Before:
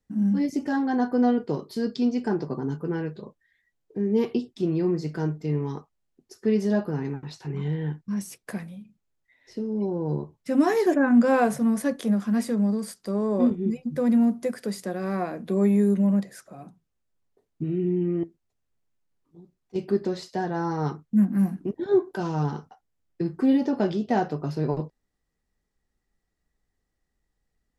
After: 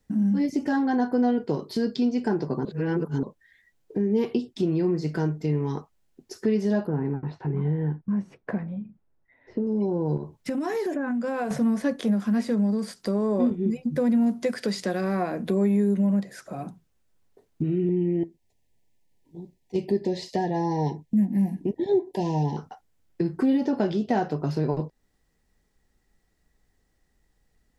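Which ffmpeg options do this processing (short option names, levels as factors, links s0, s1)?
-filter_complex "[0:a]asettb=1/sr,asplit=3[s0][s1][s2];[s0]atrim=end=6.874[s3];[s1]atrim=start=6.87:end=9.67,asetpts=PTS-STARTPTS,afade=t=in:d=0.004:c=qsin,afade=t=out:st=2.796:d=0.004:c=qsin,lowpass=1300[s4];[s2]atrim=start=9.666[s5];[s3][s4]acrossfade=d=0.004:c1=hsin:c2=qsin[s6];[s6][s5]acrossfade=d=0.004:c1=qsin:c2=hsin,asettb=1/sr,asplit=3[s7][s8][s9];[s7]atrim=end=10.174[s10];[s8]atrim=start=10.17:end=11.51,asetpts=PTS-STARTPTS,afade=t=in:d=0.004:c=qsin,afade=t=out:st=1.336:d=0.004:c=qsin,acompressor=threshold=0.0316:ratio=6:attack=3.2:release=140:knee=1:detection=peak[s11];[s9]atrim=start=11.506[s12];[s10][s11]acrossfade=d=0.004:c1=hsin:c2=qsin[s13];[s13][s12]acrossfade=d=0.004:c1=qsin:c2=hsin,asettb=1/sr,asplit=3[s14][s15][s16];[s14]atrim=end=14.264[s17];[s15]atrim=start=14.26:end=15.01,asetpts=PTS-STARTPTS,afade=t=in:d=0.004:c=qsin,afade=t=out:st=0.746:d=0.004:c=qsin,equalizer=f=5200:w=0.35:g=7[s18];[s16]atrim=start=15.006[s19];[s17][s18]acrossfade=d=0.004:c1=hsin:c2=qsin[s20];[s20][s19]acrossfade=d=0.004:c1=qsin:c2=hsin,asettb=1/sr,asplit=3[s21][s22][s23];[s21]atrim=end=17.894[s24];[s22]atrim=start=17.89:end=22.57,asetpts=PTS-STARTPTS,afade=t=in:d=0.004:c=qsin,afade=t=out:st=4.676:d=0.004:c=qsin,asuperstop=centerf=1300:order=20:qfactor=1.9[s25];[s23]atrim=start=22.566[s26];[s24][s25]acrossfade=d=0.004:c1=hsin:c2=qsin[s27];[s27][s26]acrossfade=d=0.004:c1=qsin:c2=hsin,asplit=3[s28][s29][s30];[s28]atrim=end=2.652[s31];[s29]atrim=start=2.648:end=3.232,asetpts=PTS-STARTPTS,areverse[s32];[s30]atrim=start=3.228[s33];[s31][s32]acrossfade=d=0.004:c1=hsin:c2=hsin[s34];[s34][s33]acrossfade=d=0.004:c1=hsin:c2=hsin,acrossover=split=5900[s35][s36];[s36]acompressor=threshold=0.00178:ratio=4:attack=1:release=60[s37];[s35][s37]amix=inputs=2:normalize=0,bandreject=f=1200:w=17,acompressor=threshold=0.0141:ratio=2,volume=2.82"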